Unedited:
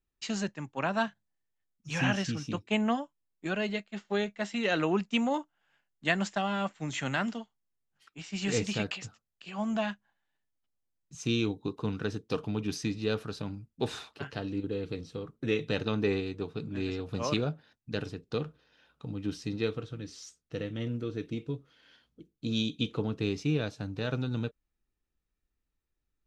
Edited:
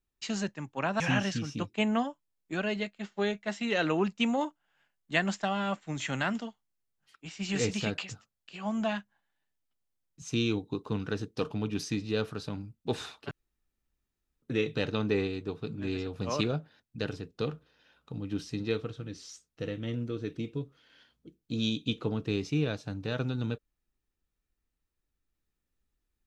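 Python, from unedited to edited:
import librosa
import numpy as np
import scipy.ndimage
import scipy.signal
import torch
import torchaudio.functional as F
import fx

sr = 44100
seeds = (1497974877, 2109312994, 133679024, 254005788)

y = fx.edit(x, sr, fx.cut(start_s=1.0, length_s=0.93),
    fx.room_tone_fill(start_s=14.24, length_s=1.11), tone=tone)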